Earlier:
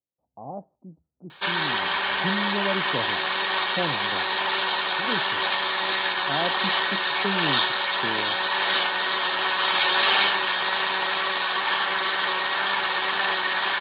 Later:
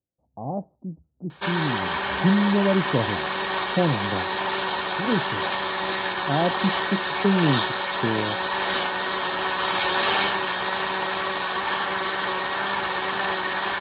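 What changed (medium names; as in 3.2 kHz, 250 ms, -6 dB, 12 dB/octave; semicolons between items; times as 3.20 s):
speech +3.0 dB; master: add tilt EQ -3 dB/octave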